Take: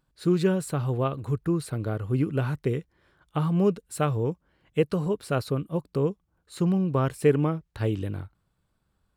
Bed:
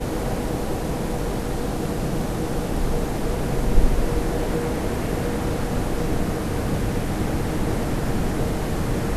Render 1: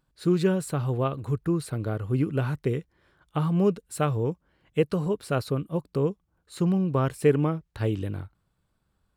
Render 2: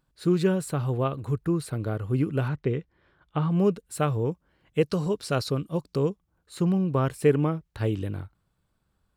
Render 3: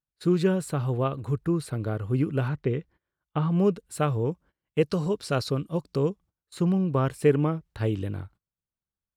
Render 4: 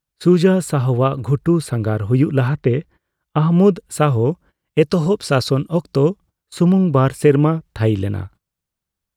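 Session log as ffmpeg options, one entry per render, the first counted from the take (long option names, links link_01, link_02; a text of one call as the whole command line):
ffmpeg -i in.wav -af anull out.wav
ffmpeg -i in.wav -filter_complex "[0:a]asettb=1/sr,asplit=3[link_01][link_02][link_03];[link_01]atrim=end=2.484[link_04];[link_02]atrim=start=2.48:end=3.51,asetpts=PTS-STARTPTS,afade=type=in:duration=0.004:curve=qsin,afade=type=out:start_time=1.026:duration=0.004:curve=qsin,lowpass=3900[link_05];[link_03]atrim=start=3.506[link_06];[link_04][link_05]acrossfade=duration=0.004:curve1=hsin:curve2=qsin[link_07];[link_07][link_06]acrossfade=duration=0.004:curve1=qsin:curve2=hsin,asettb=1/sr,asplit=3[link_08][link_09][link_10];[link_08]atrim=end=4.814[link_11];[link_09]atrim=start=4.81:end=6.1,asetpts=PTS-STARTPTS,afade=type=in:duration=0.004:curve=qsin,afade=type=out:start_time=1.286:duration=0.004:curve=qsin,equalizer=frequency=5400:width=1.1:gain=10[link_12];[link_10]atrim=start=6.096[link_13];[link_11][link_12]acrossfade=duration=0.004:curve1=hsin:curve2=qsin[link_14];[link_14][link_13]acrossfade=duration=0.004:curve1=qsin:curve2=hsin" out.wav
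ffmpeg -i in.wav -af "agate=range=-23dB:threshold=-50dB:ratio=16:detection=peak,highshelf=frequency=9600:gain=-4" out.wav
ffmpeg -i in.wav -af "volume=10dB,alimiter=limit=-3dB:level=0:latency=1" out.wav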